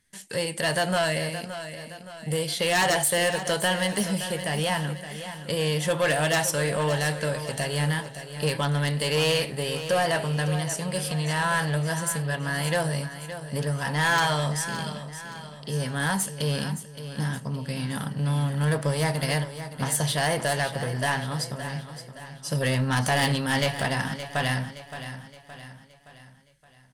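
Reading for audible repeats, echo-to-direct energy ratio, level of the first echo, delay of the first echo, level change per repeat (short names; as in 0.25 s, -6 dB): 4, -10.5 dB, -11.5 dB, 0.569 s, -6.5 dB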